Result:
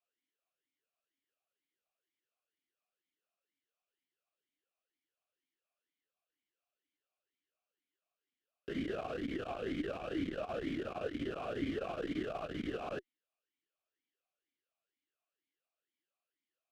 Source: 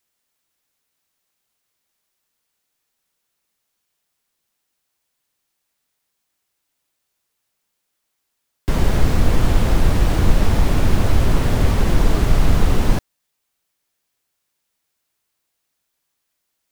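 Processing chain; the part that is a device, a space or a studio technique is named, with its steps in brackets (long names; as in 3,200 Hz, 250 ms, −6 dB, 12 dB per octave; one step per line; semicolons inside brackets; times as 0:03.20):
talk box (tube saturation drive 11 dB, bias 0.3; formant filter swept between two vowels a-i 2.1 Hz)
level −1 dB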